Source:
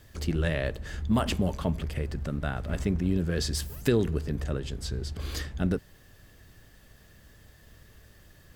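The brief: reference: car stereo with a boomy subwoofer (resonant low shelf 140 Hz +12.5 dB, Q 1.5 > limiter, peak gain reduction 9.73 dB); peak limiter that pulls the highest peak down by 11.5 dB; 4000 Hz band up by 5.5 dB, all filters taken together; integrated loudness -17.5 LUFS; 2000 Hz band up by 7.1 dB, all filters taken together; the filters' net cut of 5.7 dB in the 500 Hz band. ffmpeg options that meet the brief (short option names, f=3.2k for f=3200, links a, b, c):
-af "equalizer=f=500:t=o:g=-6.5,equalizer=f=2k:t=o:g=8.5,equalizer=f=4k:t=o:g=4.5,alimiter=limit=-21dB:level=0:latency=1,lowshelf=f=140:t=q:w=1.5:g=12.5,volume=9.5dB,alimiter=limit=-9dB:level=0:latency=1"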